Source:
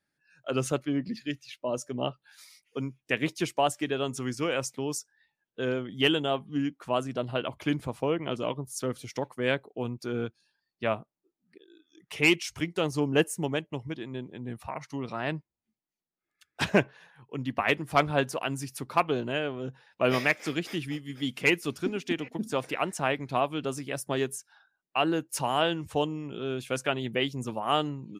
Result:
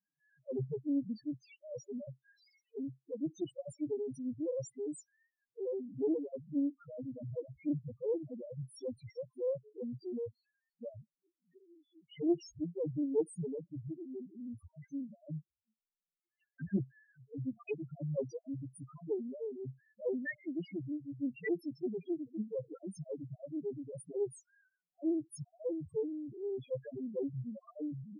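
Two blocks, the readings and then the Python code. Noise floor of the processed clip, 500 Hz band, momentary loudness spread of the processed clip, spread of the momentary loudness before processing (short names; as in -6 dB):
under -85 dBFS, -8.0 dB, 12 LU, 11 LU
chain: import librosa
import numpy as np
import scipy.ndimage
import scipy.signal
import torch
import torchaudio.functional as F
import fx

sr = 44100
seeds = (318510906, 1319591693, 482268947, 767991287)

y = fx.spec_topn(x, sr, count=1)
y = scipy.signal.sosfilt(scipy.signal.cheby1(3, 1.0, [530.0, 1300.0], 'bandstop', fs=sr, output='sos'), y)
y = fx.doppler_dist(y, sr, depth_ms=0.23)
y = y * librosa.db_to_amplitude(2.0)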